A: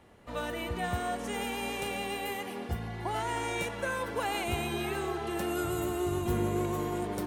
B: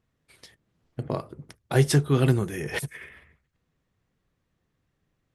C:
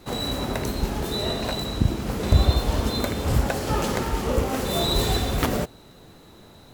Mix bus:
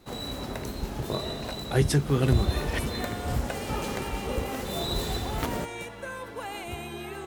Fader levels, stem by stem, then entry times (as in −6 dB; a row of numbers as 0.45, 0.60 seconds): −4.5, −3.0, −7.5 decibels; 2.20, 0.00, 0.00 seconds